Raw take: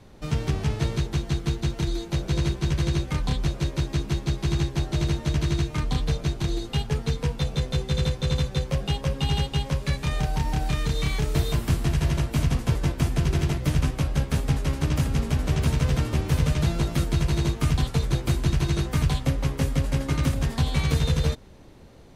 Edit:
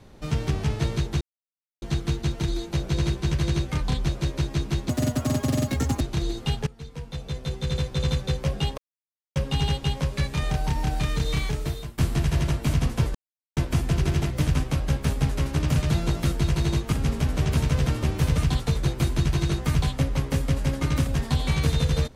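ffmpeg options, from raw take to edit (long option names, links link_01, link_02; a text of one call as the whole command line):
ffmpeg -i in.wav -filter_complex "[0:a]asplit=11[link_01][link_02][link_03][link_04][link_05][link_06][link_07][link_08][link_09][link_10][link_11];[link_01]atrim=end=1.21,asetpts=PTS-STARTPTS,afade=type=out:start_time=1.206:duration=0.004:curve=hsin,apad=pad_dur=0.61[link_12];[link_02]atrim=start=1.21:end=4.284,asetpts=PTS-STARTPTS,afade=type=in:duration=0.004:curve=hsin[link_13];[link_03]atrim=start=4.28:end=6.28,asetpts=PTS-STARTPTS,asetrate=78939,aresample=44100[link_14];[link_04]atrim=start=6.276:end=6.94,asetpts=PTS-STARTPTS,afade=type=out:start_time=0.66:duration=0.004:curve=hsin:silence=0.105925[link_15];[link_05]atrim=start=6.94:end=9.05,asetpts=PTS-STARTPTS,afade=type=in:duration=1.45:silence=0.105925,afade=type=out:start_time=2.106:duration=0.004:curve=hsin,apad=pad_dur=0.58[link_16];[link_06]atrim=start=9.05:end=11.67,asetpts=PTS-STARTPTS,afade=type=in:duration=0.004:curve=hsin,afade=type=out:start_time=2.02:duration=0.6:silence=0.0944061[link_17];[link_07]atrim=start=11.67:end=12.84,asetpts=PTS-STARTPTS,afade=type=in:duration=0.004:curve=hsin:silence=0.0944061,afade=type=out:start_time=1.166:duration=0.004:curve=hsin,apad=pad_dur=0.42[link_18];[link_08]atrim=start=12.84:end=15.032,asetpts=PTS-STARTPTS,afade=type=in:duration=0.004:curve=hsin[link_19];[link_09]atrim=start=16.478:end=17.652[link_20];[link_10]atrim=start=15.028:end=16.482[link_21];[link_11]atrim=start=17.648[link_22];[link_12][link_13]concat=n=2:v=0:a=1[link_23];[link_23][link_14]acrossfade=duration=0.004:curve1=hsin:curve2=hsin[link_24];[link_15][link_16][link_17][link_18][link_19]concat=n=5:v=0:a=1[link_25];[link_24][link_25]acrossfade=duration=0.004:curve1=hsin:curve2=hsin[link_26];[link_26][link_20]acrossfade=duration=0.004:curve1=hsin:curve2=hsin[link_27];[link_27][link_21]acrossfade=duration=0.004:curve1=hsin:curve2=hsin[link_28];[link_28][link_22]acrossfade=duration=0.004:curve1=hsin:curve2=hsin" out.wav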